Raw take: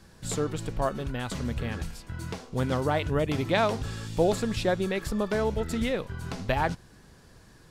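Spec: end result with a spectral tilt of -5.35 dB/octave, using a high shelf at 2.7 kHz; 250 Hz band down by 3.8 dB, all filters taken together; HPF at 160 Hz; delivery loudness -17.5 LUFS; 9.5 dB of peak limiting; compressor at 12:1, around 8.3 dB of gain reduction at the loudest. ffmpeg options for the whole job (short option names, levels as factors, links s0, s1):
-af "highpass=160,equalizer=f=250:t=o:g=-3.5,highshelf=f=2700:g=-6.5,acompressor=threshold=0.0398:ratio=12,volume=10.6,alimiter=limit=0.473:level=0:latency=1"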